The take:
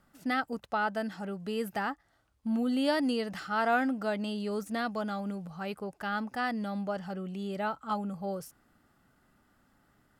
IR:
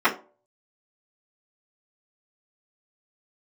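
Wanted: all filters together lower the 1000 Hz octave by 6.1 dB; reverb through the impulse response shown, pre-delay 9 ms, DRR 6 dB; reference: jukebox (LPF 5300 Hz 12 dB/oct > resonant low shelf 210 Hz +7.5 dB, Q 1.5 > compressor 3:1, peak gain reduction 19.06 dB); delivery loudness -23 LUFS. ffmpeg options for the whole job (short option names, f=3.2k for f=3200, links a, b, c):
-filter_complex "[0:a]equalizer=f=1k:t=o:g=-8.5,asplit=2[a][b];[1:a]atrim=start_sample=2205,adelay=9[c];[b][c]afir=irnorm=-1:irlink=0,volume=-25dB[d];[a][d]amix=inputs=2:normalize=0,lowpass=5.3k,lowshelf=f=210:t=q:w=1.5:g=7.5,acompressor=threshold=-50dB:ratio=3,volume=24.5dB"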